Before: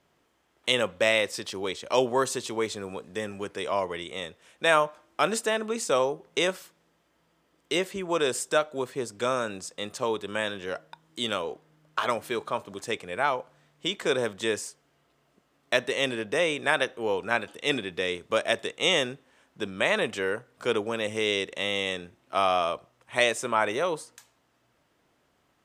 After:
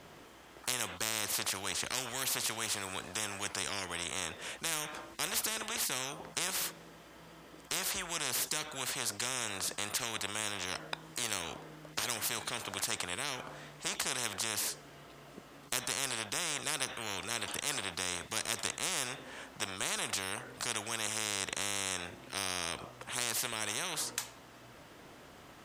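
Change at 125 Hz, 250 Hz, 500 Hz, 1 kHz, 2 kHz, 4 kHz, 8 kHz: -6.0, -12.0, -18.0, -11.0, -8.5, -4.5, +5.0 dB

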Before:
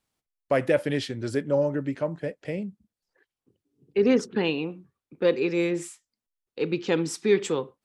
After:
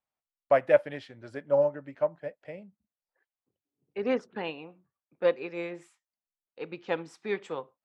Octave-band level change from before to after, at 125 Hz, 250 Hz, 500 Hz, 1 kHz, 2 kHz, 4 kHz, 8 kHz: -13.0 dB, -12.0 dB, -3.0 dB, +1.5 dB, -4.5 dB, -10.5 dB, under -20 dB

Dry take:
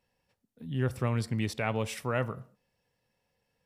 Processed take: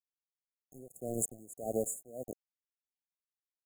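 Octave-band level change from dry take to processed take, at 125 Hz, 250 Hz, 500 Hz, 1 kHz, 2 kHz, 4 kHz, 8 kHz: -19.0 dB, -8.5 dB, -4.0 dB, -12.5 dB, under -40 dB, under -40 dB, +8.0 dB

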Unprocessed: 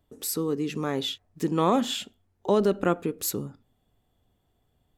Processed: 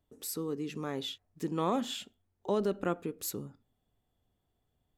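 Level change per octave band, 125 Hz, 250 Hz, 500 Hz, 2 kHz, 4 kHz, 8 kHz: -8.0, -8.0, -8.0, -8.0, -8.0, -8.0 dB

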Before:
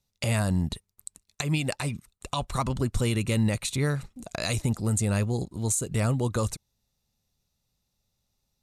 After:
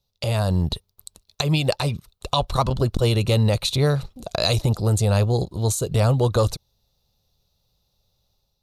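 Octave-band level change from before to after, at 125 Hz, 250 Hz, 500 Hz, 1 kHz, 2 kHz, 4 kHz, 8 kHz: +7.0, +2.5, +9.5, +7.5, +2.0, +9.5, 0.0 dB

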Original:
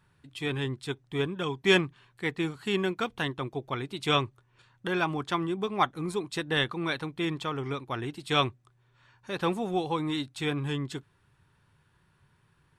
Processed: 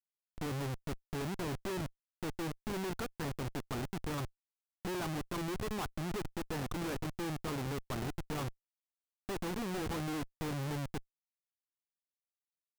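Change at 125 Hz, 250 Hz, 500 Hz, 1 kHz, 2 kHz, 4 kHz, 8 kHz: -5.0, -7.5, -10.0, -10.5, -13.0, -14.0, -0.5 dB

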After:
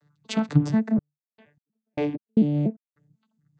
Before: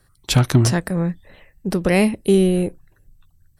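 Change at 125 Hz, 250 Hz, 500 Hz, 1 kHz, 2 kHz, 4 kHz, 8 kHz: -8.0 dB, -4.0 dB, -13.0 dB, -9.5 dB, -14.0 dB, under -10 dB, under -15 dB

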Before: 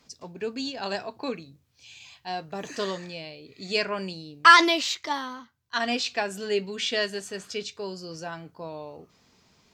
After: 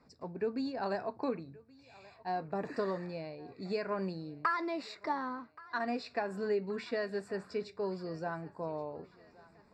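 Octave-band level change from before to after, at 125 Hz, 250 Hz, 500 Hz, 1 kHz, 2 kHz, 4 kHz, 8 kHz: -2.0 dB, -5.0 dB, -4.0 dB, -11.5 dB, -16.5 dB, -22.0 dB, under -20 dB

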